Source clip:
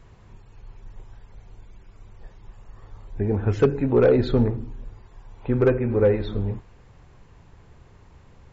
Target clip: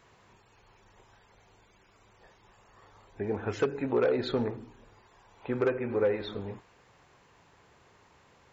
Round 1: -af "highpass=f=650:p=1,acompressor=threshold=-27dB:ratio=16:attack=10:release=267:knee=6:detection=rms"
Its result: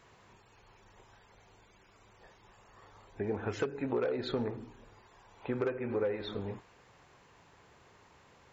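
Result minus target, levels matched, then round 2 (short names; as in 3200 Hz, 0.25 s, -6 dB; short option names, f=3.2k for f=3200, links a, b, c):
compressor: peak gain reduction +7 dB
-af "highpass=f=650:p=1,acompressor=threshold=-19.5dB:ratio=16:attack=10:release=267:knee=6:detection=rms"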